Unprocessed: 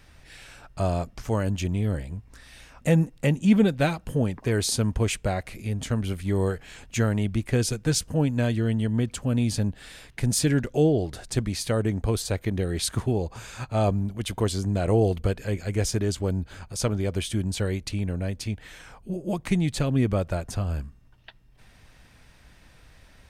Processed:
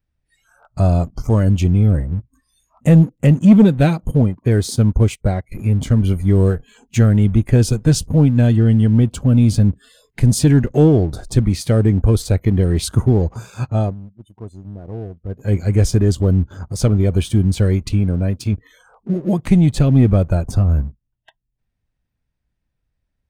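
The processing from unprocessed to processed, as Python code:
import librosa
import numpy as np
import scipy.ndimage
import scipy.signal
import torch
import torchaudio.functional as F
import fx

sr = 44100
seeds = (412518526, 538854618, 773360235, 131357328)

y = fx.upward_expand(x, sr, threshold_db=-39.0, expansion=1.5, at=(4.11, 5.52))
y = fx.low_shelf(y, sr, hz=110.0, db=-4.5, at=(18.0, 18.53))
y = fx.edit(y, sr, fx.fade_down_up(start_s=13.66, length_s=1.89, db=-19.0, fade_s=0.29), tone=tone)
y = fx.noise_reduce_blind(y, sr, reduce_db=28)
y = fx.low_shelf(y, sr, hz=410.0, db=11.5)
y = fx.leveller(y, sr, passes=1)
y = F.gain(torch.from_numpy(y), -1.0).numpy()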